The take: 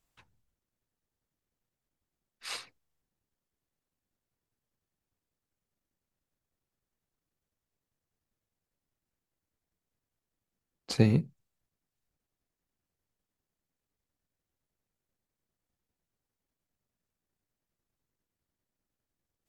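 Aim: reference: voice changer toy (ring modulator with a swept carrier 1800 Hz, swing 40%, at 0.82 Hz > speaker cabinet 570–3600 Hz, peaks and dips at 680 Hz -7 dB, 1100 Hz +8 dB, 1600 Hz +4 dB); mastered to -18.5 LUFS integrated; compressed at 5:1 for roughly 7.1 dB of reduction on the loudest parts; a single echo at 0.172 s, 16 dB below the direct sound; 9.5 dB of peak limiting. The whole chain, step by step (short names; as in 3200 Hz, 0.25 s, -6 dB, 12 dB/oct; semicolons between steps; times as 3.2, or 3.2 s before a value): compressor 5:1, threshold -25 dBFS; limiter -23 dBFS; echo 0.172 s -16 dB; ring modulator with a swept carrier 1800 Hz, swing 40%, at 0.82 Hz; speaker cabinet 570–3600 Hz, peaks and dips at 680 Hz -7 dB, 1100 Hz +8 dB, 1600 Hz +4 dB; gain +20.5 dB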